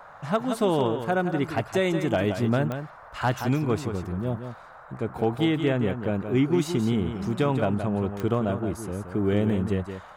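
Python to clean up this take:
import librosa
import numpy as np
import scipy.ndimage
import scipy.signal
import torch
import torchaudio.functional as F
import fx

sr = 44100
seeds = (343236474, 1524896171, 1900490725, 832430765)

y = fx.fix_declip(x, sr, threshold_db=-13.5)
y = fx.fix_declick_ar(y, sr, threshold=10.0)
y = fx.noise_reduce(y, sr, print_start_s=4.5, print_end_s=5.0, reduce_db=27.0)
y = fx.fix_echo_inverse(y, sr, delay_ms=172, level_db=-8.5)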